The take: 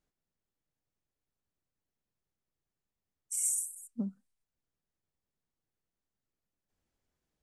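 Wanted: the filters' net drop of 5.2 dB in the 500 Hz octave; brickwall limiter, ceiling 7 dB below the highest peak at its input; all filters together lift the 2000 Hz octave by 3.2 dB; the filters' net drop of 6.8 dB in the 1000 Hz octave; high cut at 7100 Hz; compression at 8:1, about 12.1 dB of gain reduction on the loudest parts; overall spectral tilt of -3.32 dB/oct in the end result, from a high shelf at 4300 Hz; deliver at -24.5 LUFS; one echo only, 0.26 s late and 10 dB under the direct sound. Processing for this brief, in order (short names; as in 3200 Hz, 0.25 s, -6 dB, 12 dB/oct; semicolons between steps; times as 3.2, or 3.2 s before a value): LPF 7100 Hz; bell 500 Hz -5 dB; bell 1000 Hz -8.5 dB; bell 2000 Hz +4 dB; high shelf 4300 Hz +5 dB; compressor 8:1, threshold -41 dBFS; limiter -35.5 dBFS; echo 0.26 s -10 dB; gain +22 dB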